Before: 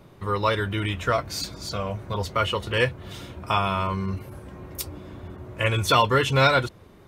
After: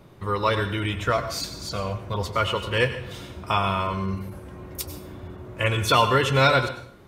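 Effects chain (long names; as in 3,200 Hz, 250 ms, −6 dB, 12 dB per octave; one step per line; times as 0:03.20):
dense smooth reverb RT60 0.53 s, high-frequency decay 0.95×, pre-delay 80 ms, DRR 10 dB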